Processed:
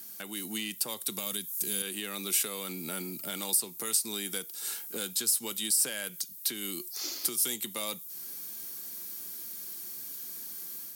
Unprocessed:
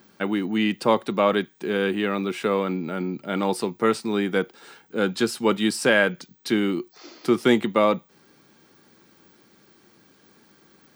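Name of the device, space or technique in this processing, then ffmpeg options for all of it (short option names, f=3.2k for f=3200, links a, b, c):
FM broadcast chain: -filter_complex "[0:a]asettb=1/sr,asplit=3[a][b][c];[a]atrim=end=1.184[d];[b]atrim=start=1.18:end=1.82,asetpts=PTS-STARTPTS,afade=t=in:d=0.004:c=qsin,afade=t=out:st=0.636:d=0.004:c=qsin,bass=f=250:g=12,treble=f=4k:g=10[e];[c]atrim=start=1.816[f];[d][e]acrossfade=d=0.004:c1=hsin:c2=qsin[g];[g][f]acrossfade=d=0.004:c1=qsin:c2=hsin,highpass=79,dynaudnorm=f=190:g=3:m=4dB,acrossover=split=120|3400[h][i][j];[h]acompressor=threshold=-51dB:ratio=4[k];[i]acompressor=threshold=-30dB:ratio=4[l];[j]acompressor=threshold=-37dB:ratio=4[m];[k][l][m]amix=inputs=3:normalize=0,aemphasis=mode=production:type=75fm,alimiter=limit=-20dB:level=0:latency=1:release=433,asoftclip=type=hard:threshold=-23.5dB,lowpass=f=15k:w=0.5412,lowpass=f=15k:w=1.3066,aemphasis=mode=production:type=75fm,volume=-6dB"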